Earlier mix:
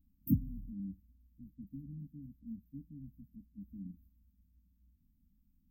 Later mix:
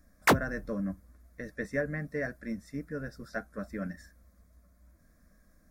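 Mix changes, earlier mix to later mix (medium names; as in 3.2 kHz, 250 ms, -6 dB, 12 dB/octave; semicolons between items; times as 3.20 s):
speech +8.0 dB; master: remove brick-wall FIR band-stop 300–13000 Hz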